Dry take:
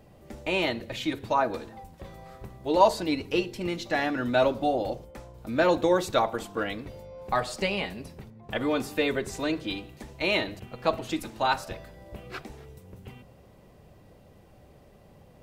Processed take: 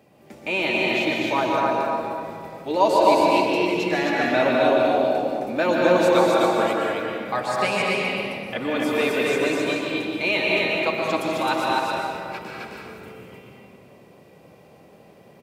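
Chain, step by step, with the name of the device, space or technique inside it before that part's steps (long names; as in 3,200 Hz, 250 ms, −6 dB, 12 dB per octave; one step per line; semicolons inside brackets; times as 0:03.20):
stadium PA (high-pass filter 170 Hz 12 dB per octave; parametric band 2,400 Hz +6.5 dB 0.25 octaves; loudspeakers that aren't time-aligned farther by 69 metres −9 dB, 90 metres −2 dB; convolution reverb RT60 2.2 s, pre-delay 114 ms, DRR −1.5 dB)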